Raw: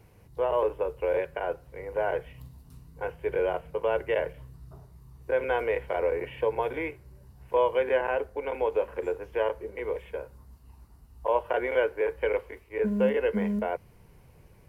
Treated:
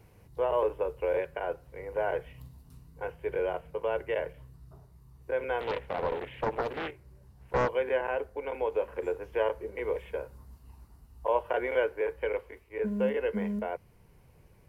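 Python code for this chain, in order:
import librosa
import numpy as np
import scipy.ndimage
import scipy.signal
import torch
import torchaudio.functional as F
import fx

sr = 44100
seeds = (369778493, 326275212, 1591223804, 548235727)

y = fx.rider(x, sr, range_db=5, speed_s=2.0)
y = fx.doppler_dist(y, sr, depth_ms=0.72, at=(5.6, 7.69))
y = F.gain(torch.from_numpy(y), -3.5).numpy()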